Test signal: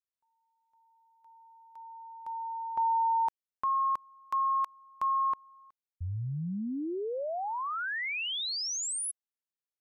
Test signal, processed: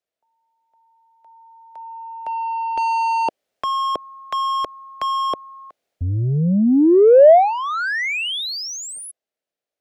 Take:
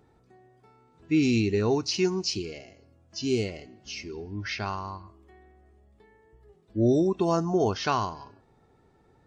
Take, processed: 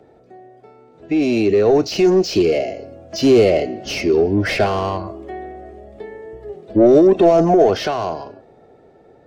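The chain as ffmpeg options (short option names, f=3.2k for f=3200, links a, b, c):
-filter_complex "[0:a]acrossover=split=280|400|1700[a][b][c][d];[a]asoftclip=type=tanh:threshold=-31dB[e];[e][b][c][d]amix=inputs=4:normalize=0,alimiter=limit=-23dB:level=0:latency=1:release=18,dynaudnorm=f=260:g=17:m=11dB,asplit=2[f][g];[g]highpass=f=720:p=1,volume=18dB,asoftclip=type=tanh:threshold=-12dB[h];[f][h]amix=inputs=2:normalize=0,lowpass=f=2.2k:p=1,volume=-6dB,lowshelf=f=790:t=q:w=3:g=6.5"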